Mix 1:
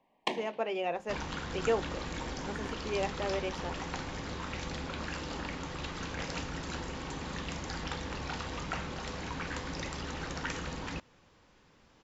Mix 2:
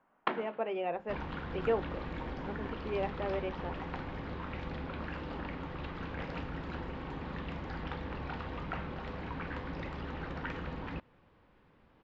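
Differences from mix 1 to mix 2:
first sound: remove Butterworth band-stop 1.4 kHz, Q 1.4; master: add distance through air 410 m

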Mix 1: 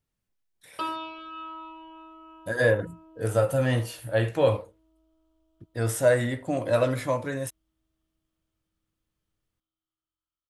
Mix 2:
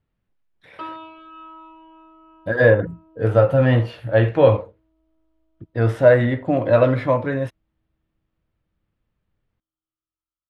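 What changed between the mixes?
speech +9.0 dB; master: add distance through air 350 m

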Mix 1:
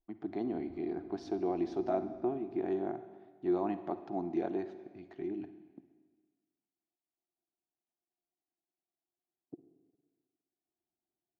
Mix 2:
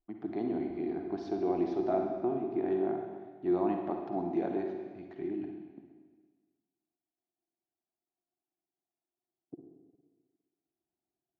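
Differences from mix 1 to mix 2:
speech: send +10.0 dB; master: add distance through air 96 m

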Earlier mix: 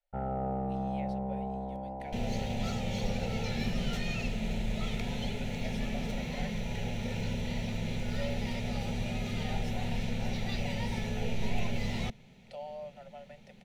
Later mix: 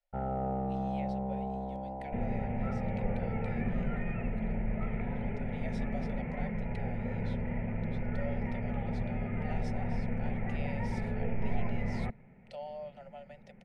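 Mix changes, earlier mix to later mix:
second sound: add steep low-pass 2.2 kHz 48 dB/octave; master: add Bessel low-pass 8.7 kHz, order 8

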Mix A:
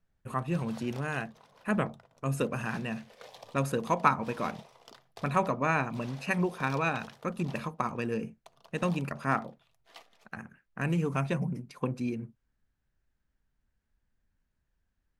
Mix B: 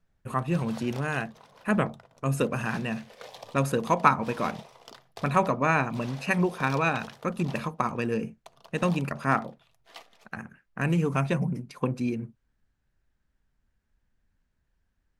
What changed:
speech +4.0 dB; background +5.0 dB

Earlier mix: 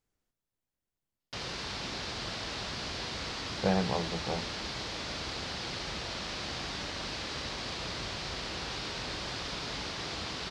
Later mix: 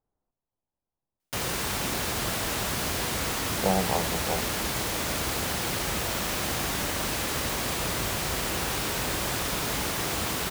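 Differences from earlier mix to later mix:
speech: add resonant low-pass 890 Hz, resonance Q 2; background: remove four-pole ladder low-pass 5.5 kHz, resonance 45%

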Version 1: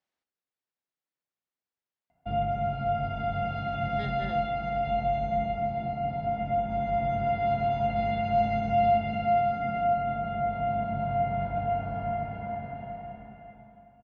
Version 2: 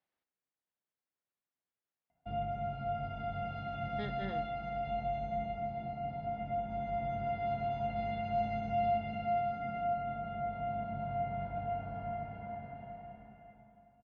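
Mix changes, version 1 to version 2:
speech: add distance through air 160 m; background -8.5 dB

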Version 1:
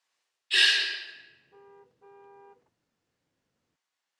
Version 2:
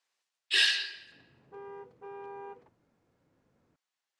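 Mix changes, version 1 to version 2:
speech: send -11.5 dB; background +9.5 dB

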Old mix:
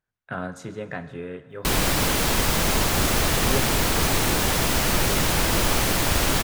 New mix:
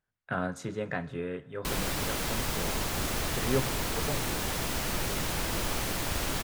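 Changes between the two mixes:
speech: send -7.0 dB; background -10.0 dB

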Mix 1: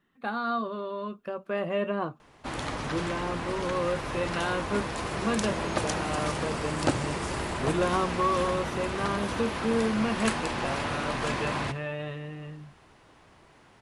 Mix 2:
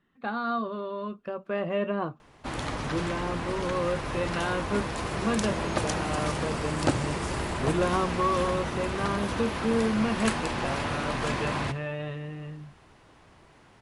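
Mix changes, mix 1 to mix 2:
speech: add distance through air 57 m; master: add bass shelf 180 Hz +3.5 dB

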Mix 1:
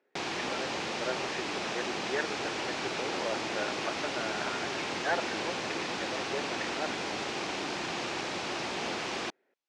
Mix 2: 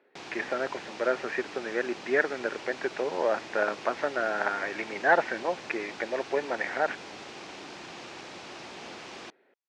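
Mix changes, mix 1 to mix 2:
speech +9.0 dB; background -8.5 dB

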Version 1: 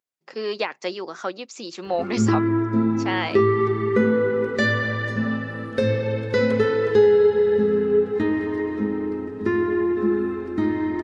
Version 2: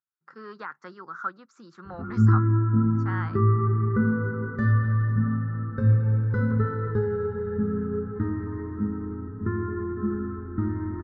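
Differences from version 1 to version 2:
background: add tilt shelf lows +7.5 dB, about 740 Hz; master: add FFT filter 140 Hz 0 dB, 260 Hz -12 dB, 650 Hz -21 dB, 1.4 kHz +5 dB, 2.5 kHz -27 dB, 4 kHz -23 dB

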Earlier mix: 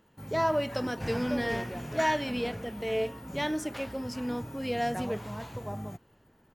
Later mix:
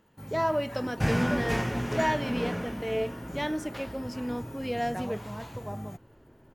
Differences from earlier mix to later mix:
speech: add treble shelf 4.6 kHz -6.5 dB; second sound +10.5 dB

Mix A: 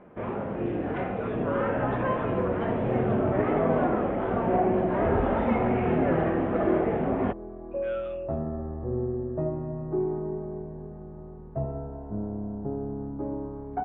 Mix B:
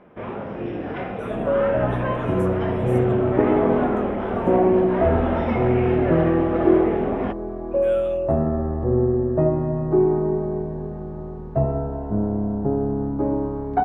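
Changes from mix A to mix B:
second sound +9.5 dB; master: remove distance through air 330 m

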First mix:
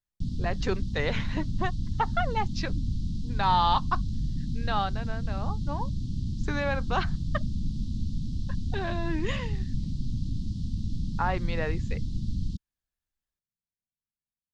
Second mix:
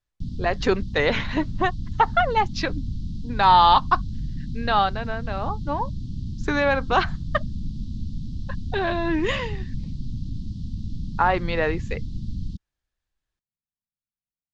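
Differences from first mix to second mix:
speech +9.0 dB; master: add distance through air 58 m

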